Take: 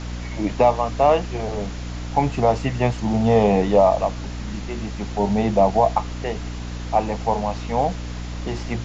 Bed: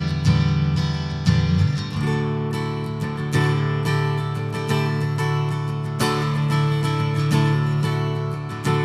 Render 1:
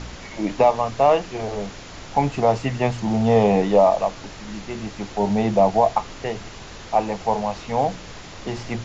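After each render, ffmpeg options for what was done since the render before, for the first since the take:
-af "bandreject=f=60:t=h:w=4,bandreject=f=120:t=h:w=4,bandreject=f=180:t=h:w=4,bandreject=f=240:t=h:w=4,bandreject=f=300:t=h:w=4"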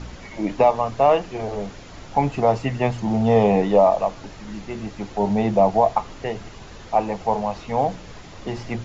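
-af "afftdn=nr=6:nf=-39"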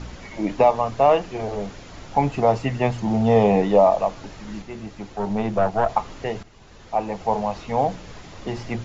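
-filter_complex "[0:a]asettb=1/sr,asplit=3[a][b][c];[a]atrim=end=4.624[d];[b]atrim=start=4.62:end=5.89,asetpts=PTS-STARTPTS,afade=t=in:d=0.004:c=qsin,afade=t=out:st=1.266:d=0.004:c=qsin,aeval=exprs='(tanh(2.82*val(0)+0.7)-tanh(0.7))/2.82':c=same[e];[c]atrim=start=5.886[f];[d][e]acrossfade=d=0.004:c1=hsin:c2=qsin[g];[g][f]acrossfade=d=0.004:c1=qsin:c2=hsin,asplit=2[h][i];[h]atrim=end=6.43,asetpts=PTS-STARTPTS,afade=t=out:st=6.426:d=0.004:c=hsin:silence=0.211349[j];[i]atrim=start=6.43,asetpts=PTS-STARTPTS,afade=t=in:d=0.95:silence=0.211349[k];[j][k]concat=n=2:v=0:a=1"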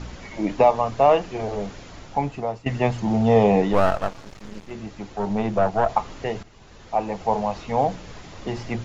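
-filter_complex "[0:a]asettb=1/sr,asplit=3[a][b][c];[a]atrim=end=3.734[d];[b]atrim=start=3.73:end=4.71,asetpts=PTS-STARTPTS,afade=t=in:d=0.004:c=qsin,afade=t=out:st=0.976:d=0.004:c=qsin,aeval=exprs='max(val(0),0)':c=same[e];[c]atrim=start=4.706[f];[d][e]acrossfade=d=0.004:c1=hsin:c2=qsin[g];[g][f]acrossfade=d=0.004:c1=qsin:c2=hsin,asplit=2[h][i];[h]atrim=end=2.66,asetpts=PTS-STARTPTS,afade=t=out:st=1.84:d=0.82:silence=0.149624[j];[i]atrim=start=2.66,asetpts=PTS-STARTPTS,afade=t=in:d=0.004:c=hsin:silence=0.149624[k];[j][k]concat=n=2:v=0:a=1"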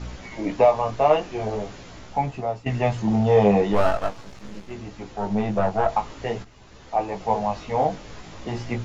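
-filter_complex "[0:a]asplit=2[a][b];[b]asoftclip=type=tanh:threshold=-14.5dB,volume=-9dB[c];[a][c]amix=inputs=2:normalize=0,flanger=delay=15.5:depth=4.1:speed=0.44"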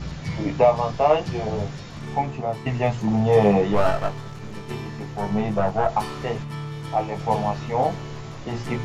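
-filter_complex "[1:a]volume=-12.5dB[a];[0:a][a]amix=inputs=2:normalize=0"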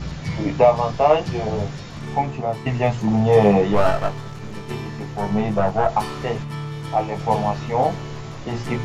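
-af "volume=2.5dB"

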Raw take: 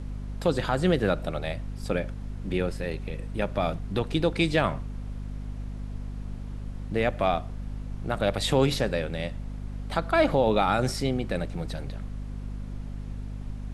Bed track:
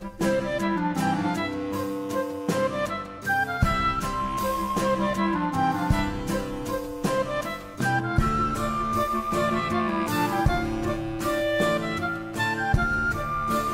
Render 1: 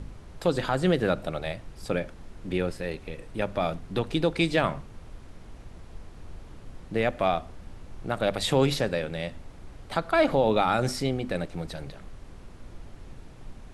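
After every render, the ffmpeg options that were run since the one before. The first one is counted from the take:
-af "bandreject=f=50:t=h:w=4,bandreject=f=100:t=h:w=4,bandreject=f=150:t=h:w=4,bandreject=f=200:t=h:w=4,bandreject=f=250:t=h:w=4"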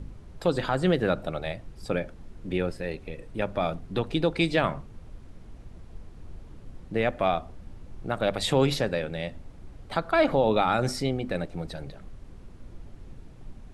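-af "afftdn=nr=6:nf=-47"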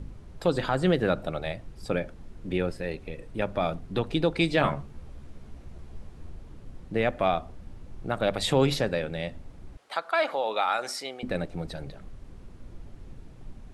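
-filter_complex "[0:a]asettb=1/sr,asplit=3[a][b][c];[a]atrim=end=4.594[d];[b]atrim=start=4.59:end=6.3,asetpts=PTS-STARTPTS,afade=t=in:d=0.004:c=qsin,afade=t=out:st=1.706:d=0.004:c=qsin,asplit=2[e][f];[f]adelay=14,volume=-4dB[g];[e][g]amix=inputs=2:normalize=0,atrim=end_sample=75411[h];[c]atrim=start=6.296[i];[d][h]acrossfade=d=0.004:c1=hsin:c2=qsin[j];[j][i]acrossfade=d=0.004:c1=qsin:c2=hsin,asettb=1/sr,asplit=3[k][l][m];[k]atrim=end=9.774[n];[l]atrim=start=9.77:end=11.23,asetpts=PTS-STARTPTS,afade=t=in:d=0.004:c=qsin,afade=t=out:st=1.456:d=0.004:c=qsin,highpass=710[o];[m]atrim=start=11.226[p];[n][o]acrossfade=d=0.004:c1=hsin:c2=qsin[q];[q][p]acrossfade=d=0.004:c1=qsin:c2=hsin"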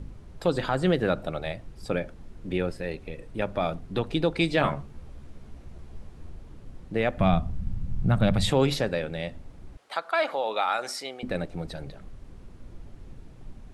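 -filter_complex "[0:a]asettb=1/sr,asplit=3[a][b][c];[a]atrim=end=7.174[d];[b]atrim=start=7.17:end=8.51,asetpts=PTS-STARTPTS,afade=t=in:d=0.004:c=qsin,afade=t=out:st=1.336:d=0.004:c=qsin,lowshelf=f=250:t=q:w=1.5:g=12.5[e];[c]atrim=start=8.506[f];[d][e]acrossfade=d=0.004:c1=hsin:c2=qsin[g];[g][f]acrossfade=d=0.004:c1=qsin:c2=hsin"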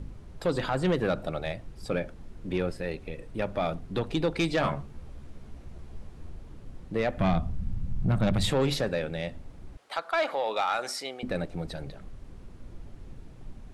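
-af "asoftclip=type=tanh:threshold=-18dB"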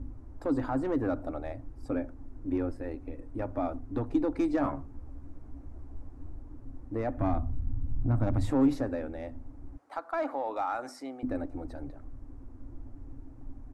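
-af "firequalizer=gain_entry='entry(120,0);entry(170,-24);entry(270,10);entry(390,-7);entry(820,-2);entry(3200,-23);entry(5800,-14)':delay=0.05:min_phase=1"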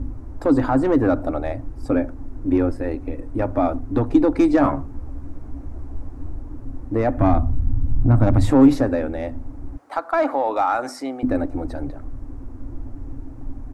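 -af "volume=12dB"

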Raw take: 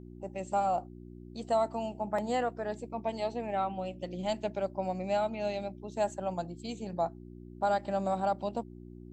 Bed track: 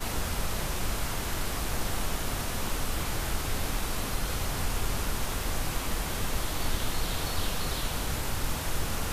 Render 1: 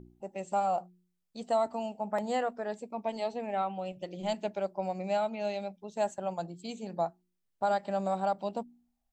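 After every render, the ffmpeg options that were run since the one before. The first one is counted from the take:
-af "bandreject=f=60:t=h:w=4,bandreject=f=120:t=h:w=4,bandreject=f=180:t=h:w=4,bandreject=f=240:t=h:w=4,bandreject=f=300:t=h:w=4,bandreject=f=360:t=h:w=4"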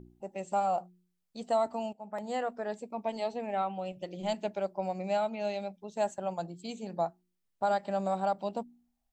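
-filter_complex "[0:a]asplit=2[a][b];[a]atrim=end=1.93,asetpts=PTS-STARTPTS,afade=t=out:st=1.926:d=0.004:c=hsin:silence=0.211349[c];[b]atrim=start=1.93,asetpts=PTS-STARTPTS,afade=t=in:d=0.67:silence=0.211349[d];[c][d]concat=n=2:v=0:a=1"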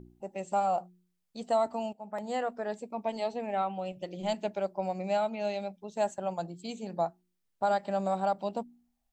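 -af "volume=1dB"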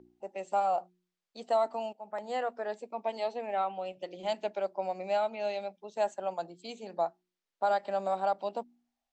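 -filter_complex "[0:a]acrossover=split=290 6800:gain=0.141 1 0.178[a][b][c];[a][b][c]amix=inputs=3:normalize=0"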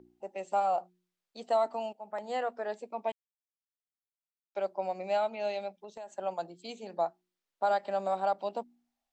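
-filter_complex "[0:a]asettb=1/sr,asplit=3[a][b][c];[a]atrim=end=5.774[d];[b]atrim=start=5.77:end=6.18,asetpts=PTS-STARTPTS,afade=t=in:d=0.004:c=qsin,afade=t=out:st=0.406:d=0.004:c=qsin,acompressor=threshold=-40dB:ratio=8:attack=3.2:release=140:knee=1:detection=peak[e];[c]atrim=start=6.176[f];[d][e]acrossfade=d=0.004:c1=hsin:c2=qsin[g];[g][f]acrossfade=d=0.004:c1=qsin:c2=hsin,asplit=3[h][i][j];[h]atrim=end=3.12,asetpts=PTS-STARTPTS,afade=t=out:st=3.116:d=0.004:c=hsin[k];[i]atrim=start=3.12:end=4.55,asetpts=PTS-STARTPTS,volume=0[l];[j]atrim=start=4.55,asetpts=PTS-STARTPTS,afade=t=in:d=0.004:c=hsin[m];[k][l][m]concat=n=3:v=0:a=1"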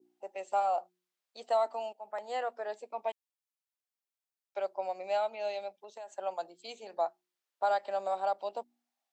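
-af "highpass=460,adynamicequalizer=threshold=0.00562:dfrequency=1700:dqfactor=0.77:tfrequency=1700:tqfactor=0.77:attack=5:release=100:ratio=0.375:range=2:mode=cutabove:tftype=bell"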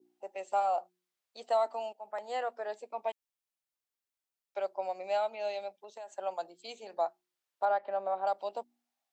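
-filter_complex "[0:a]asettb=1/sr,asplit=3[a][b][c];[a]atrim=end=7.654[d];[b]atrim=start=7.65:end=8.27,asetpts=PTS-STARTPTS,afade=t=in:d=0.004:c=qsin,afade=t=out:st=0.616:d=0.004:c=qsin,lowpass=2k[e];[c]atrim=start=8.266[f];[d][e]acrossfade=d=0.004:c1=hsin:c2=qsin[g];[g][f]acrossfade=d=0.004:c1=qsin:c2=hsin"

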